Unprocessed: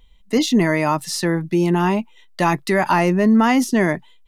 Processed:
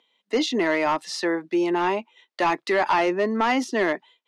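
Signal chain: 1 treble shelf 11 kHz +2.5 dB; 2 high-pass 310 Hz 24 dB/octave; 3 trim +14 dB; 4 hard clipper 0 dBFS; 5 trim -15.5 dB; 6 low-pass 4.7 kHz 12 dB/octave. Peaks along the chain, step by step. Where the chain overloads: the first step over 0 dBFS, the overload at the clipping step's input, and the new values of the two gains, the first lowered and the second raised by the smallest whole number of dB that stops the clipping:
-5.0 dBFS, -5.0 dBFS, +9.0 dBFS, 0.0 dBFS, -15.5 dBFS, -15.0 dBFS; step 3, 9.0 dB; step 3 +5 dB, step 5 -6.5 dB

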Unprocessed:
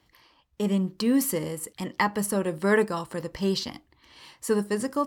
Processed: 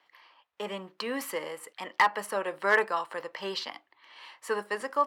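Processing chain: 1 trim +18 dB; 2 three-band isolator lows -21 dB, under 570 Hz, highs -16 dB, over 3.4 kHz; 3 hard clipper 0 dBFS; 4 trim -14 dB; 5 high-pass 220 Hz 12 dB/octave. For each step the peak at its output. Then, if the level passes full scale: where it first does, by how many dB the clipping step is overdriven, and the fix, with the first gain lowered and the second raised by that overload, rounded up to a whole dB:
+8.5 dBFS, +7.0 dBFS, 0.0 dBFS, -14.0 dBFS, -11.5 dBFS; step 1, 7.0 dB; step 1 +11 dB, step 4 -7 dB

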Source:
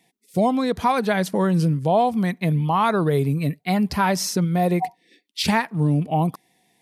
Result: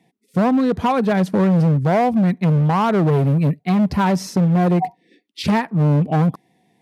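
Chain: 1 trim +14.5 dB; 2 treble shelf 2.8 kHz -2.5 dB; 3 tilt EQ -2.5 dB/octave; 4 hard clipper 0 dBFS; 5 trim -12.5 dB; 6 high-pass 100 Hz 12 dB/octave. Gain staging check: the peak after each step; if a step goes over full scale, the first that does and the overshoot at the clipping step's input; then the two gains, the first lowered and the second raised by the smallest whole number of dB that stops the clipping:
+8.0 dBFS, +7.0 dBFS, +9.5 dBFS, 0.0 dBFS, -12.5 dBFS, -7.0 dBFS; step 1, 9.5 dB; step 1 +4.5 dB, step 5 -2.5 dB

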